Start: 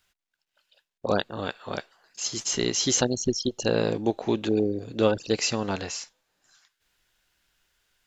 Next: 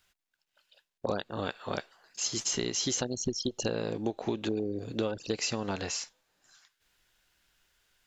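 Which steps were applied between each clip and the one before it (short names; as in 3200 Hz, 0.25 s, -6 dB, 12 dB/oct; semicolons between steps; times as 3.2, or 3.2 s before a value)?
compressor 10:1, threshold -27 dBFS, peak gain reduction 12 dB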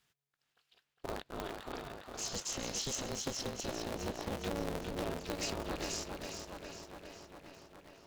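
limiter -22 dBFS, peak gain reduction 7.5 dB; tape echo 0.409 s, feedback 76%, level -3.5 dB, low-pass 5500 Hz; polarity switched at an audio rate 140 Hz; gain -6 dB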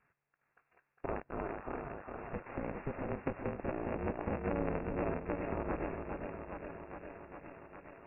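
median filter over 15 samples; brick-wall FIR low-pass 2800 Hz; mismatched tape noise reduction encoder only; gain +3 dB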